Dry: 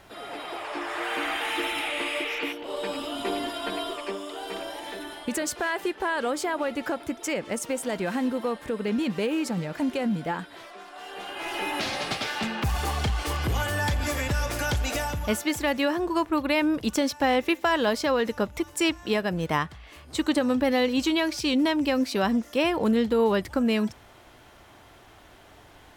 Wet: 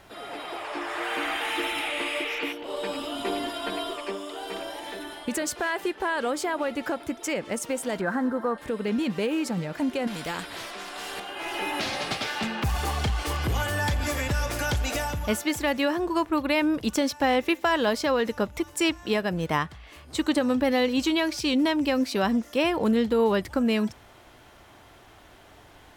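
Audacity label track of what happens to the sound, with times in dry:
8.010000	8.580000	high shelf with overshoot 2,000 Hz −8.5 dB, Q 3
10.070000	11.200000	every bin compressed towards the loudest bin 2 to 1

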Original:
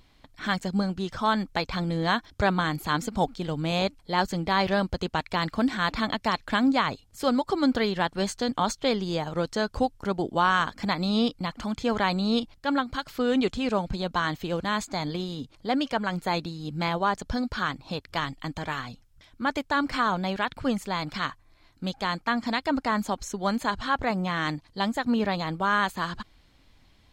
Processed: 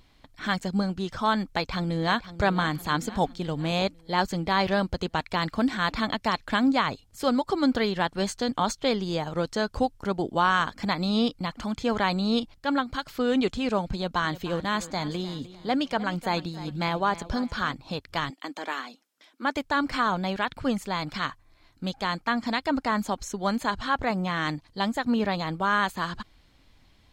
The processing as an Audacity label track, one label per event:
1.450000	2.180000	delay throw 510 ms, feedback 55%, level −14 dB
13.920000	17.740000	repeating echo 304 ms, feedback 34%, level −16 dB
18.300000	19.560000	Butterworth high-pass 250 Hz

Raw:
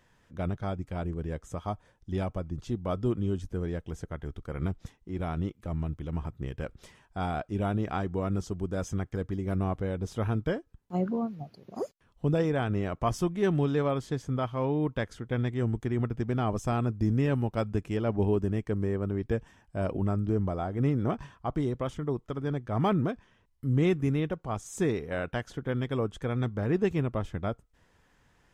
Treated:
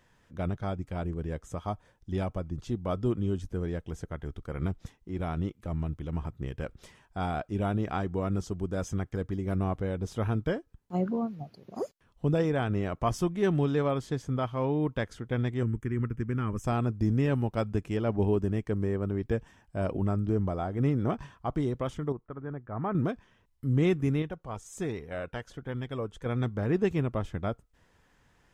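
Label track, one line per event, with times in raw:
15.630000	16.640000	phaser with its sweep stopped centre 1,700 Hz, stages 4
22.120000	22.950000	transistor ladder low-pass 2,000 Hz, resonance 30%
24.220000	26.260000	flanger 1.3 Hz, delay 0.9 ms, depth 1.4 ms, regen +61%

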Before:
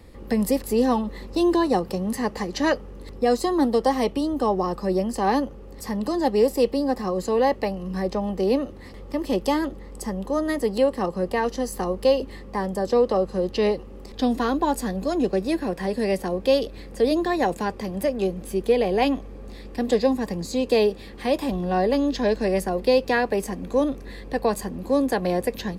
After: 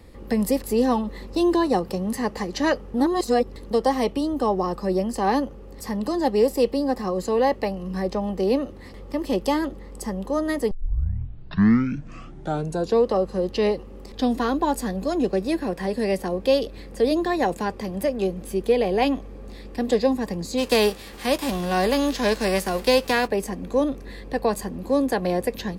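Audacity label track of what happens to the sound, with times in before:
2.940000	3.710000	reverse
10.710000	10.710000	tape start 2.36 s
20.570000	23.260000	spectral envelope flattened exponent 0.6

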